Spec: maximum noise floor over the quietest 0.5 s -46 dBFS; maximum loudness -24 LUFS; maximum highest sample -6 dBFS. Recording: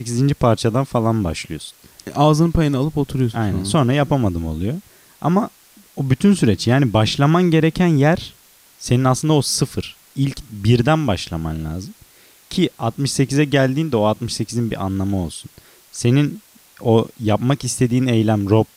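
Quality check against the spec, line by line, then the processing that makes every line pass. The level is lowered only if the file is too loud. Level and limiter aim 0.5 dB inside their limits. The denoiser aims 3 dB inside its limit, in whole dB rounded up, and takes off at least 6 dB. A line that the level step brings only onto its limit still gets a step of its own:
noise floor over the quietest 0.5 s -50 dBFS: pass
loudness -18.5 LUFS: fail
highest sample -3.5 dBFS: fail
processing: trim -6 dB

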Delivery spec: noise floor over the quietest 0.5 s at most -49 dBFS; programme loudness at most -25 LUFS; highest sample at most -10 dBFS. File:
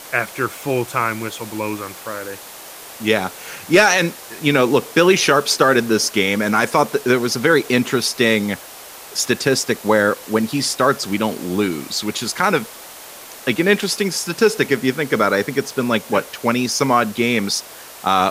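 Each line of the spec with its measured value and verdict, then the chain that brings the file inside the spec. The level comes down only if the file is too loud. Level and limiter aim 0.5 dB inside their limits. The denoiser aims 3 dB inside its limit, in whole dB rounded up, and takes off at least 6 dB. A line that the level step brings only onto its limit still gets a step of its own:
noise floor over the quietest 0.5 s -38 dBFS: fail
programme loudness -18.0 LUFS: fail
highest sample -2.5 dBFS: fail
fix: noise reduction 7 dB, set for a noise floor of -38 dBFS; trim -7.5 dB; peak limiter -10.5 dBFS

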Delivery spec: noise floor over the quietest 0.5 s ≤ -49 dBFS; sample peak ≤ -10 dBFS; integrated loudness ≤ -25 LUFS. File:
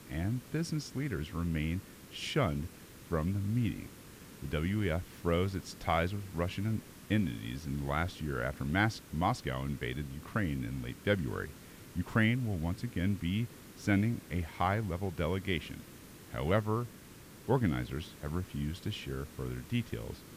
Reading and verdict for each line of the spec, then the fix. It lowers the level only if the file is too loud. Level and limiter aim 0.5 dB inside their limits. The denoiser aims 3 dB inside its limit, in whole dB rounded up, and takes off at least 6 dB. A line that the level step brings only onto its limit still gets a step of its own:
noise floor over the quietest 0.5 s -52 dBFS: pass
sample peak -15.0 dBFS: pass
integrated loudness -35.0 LUFS: pass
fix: none needed

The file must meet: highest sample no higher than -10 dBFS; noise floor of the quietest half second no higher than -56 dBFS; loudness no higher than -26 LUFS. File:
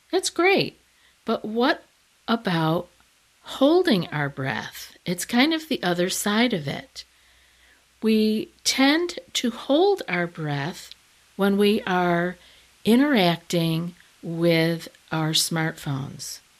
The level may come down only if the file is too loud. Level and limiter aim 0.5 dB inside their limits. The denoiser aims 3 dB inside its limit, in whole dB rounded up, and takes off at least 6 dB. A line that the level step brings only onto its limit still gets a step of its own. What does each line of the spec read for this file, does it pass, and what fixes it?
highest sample -6.5 dBFS: fail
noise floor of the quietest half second -60 dBFS: pass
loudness -23.0 LUFS: fail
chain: trim -3.5 dB; peak limiter -10.5 dBFS

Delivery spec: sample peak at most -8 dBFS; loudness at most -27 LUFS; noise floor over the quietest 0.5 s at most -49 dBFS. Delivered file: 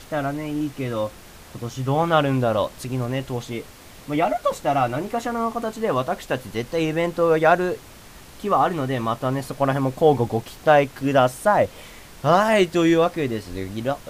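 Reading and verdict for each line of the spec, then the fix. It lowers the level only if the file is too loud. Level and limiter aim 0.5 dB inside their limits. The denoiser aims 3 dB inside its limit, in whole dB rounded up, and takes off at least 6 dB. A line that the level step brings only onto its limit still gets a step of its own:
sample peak -5.0 dBFS: fail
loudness -22.0 LUFS: fail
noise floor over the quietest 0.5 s -44 dBFS: fail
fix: trim -5.5 dB

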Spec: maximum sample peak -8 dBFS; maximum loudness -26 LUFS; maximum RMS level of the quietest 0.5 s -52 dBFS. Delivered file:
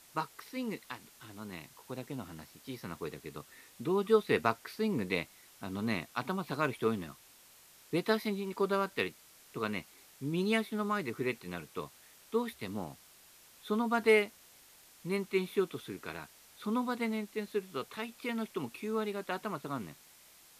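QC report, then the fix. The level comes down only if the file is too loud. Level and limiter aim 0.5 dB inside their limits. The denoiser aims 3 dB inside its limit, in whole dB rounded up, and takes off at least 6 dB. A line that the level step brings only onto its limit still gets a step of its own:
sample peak -12.0 dBFS: pass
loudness -35.0 LUFS: pass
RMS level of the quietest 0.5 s -59 dBFS: pass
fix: none needed

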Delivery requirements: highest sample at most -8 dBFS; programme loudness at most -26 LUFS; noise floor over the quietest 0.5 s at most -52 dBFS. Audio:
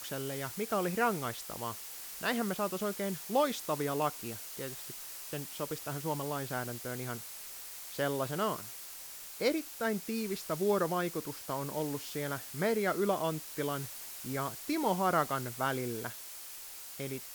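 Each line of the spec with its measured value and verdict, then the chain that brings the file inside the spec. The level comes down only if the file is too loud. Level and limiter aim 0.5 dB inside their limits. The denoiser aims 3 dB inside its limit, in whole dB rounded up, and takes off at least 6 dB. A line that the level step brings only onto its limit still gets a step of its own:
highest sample -15.0 dBFS: pass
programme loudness -35.0 LUFS: pass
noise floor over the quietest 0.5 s -47 dBFS: fail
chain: noise reduction 8 dB, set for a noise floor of -47 dBFS

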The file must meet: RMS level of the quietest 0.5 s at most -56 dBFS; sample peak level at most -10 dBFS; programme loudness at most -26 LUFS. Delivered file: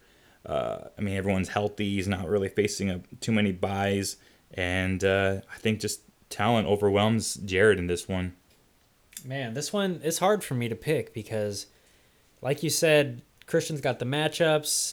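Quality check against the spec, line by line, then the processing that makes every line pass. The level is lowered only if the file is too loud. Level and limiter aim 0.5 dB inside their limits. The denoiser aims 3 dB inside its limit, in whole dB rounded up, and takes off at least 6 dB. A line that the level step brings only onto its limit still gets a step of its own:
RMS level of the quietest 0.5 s -63 dBFS: pass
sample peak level -8.5 dBFS: fail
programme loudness -27.0 LUFS: pass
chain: peak limiter -10.5 dBFS

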